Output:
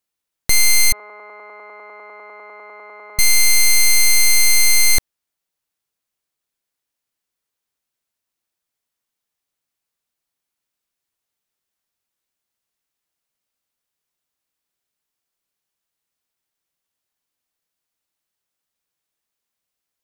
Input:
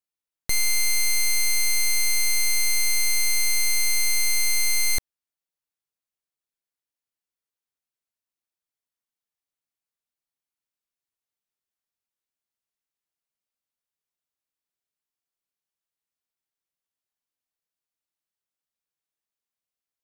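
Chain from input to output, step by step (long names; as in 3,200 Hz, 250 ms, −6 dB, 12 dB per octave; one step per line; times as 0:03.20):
0:00.92–0:03.19: elliptic band-pass filter 330–1,300 Hz, stop band 70 dB
level +9 dB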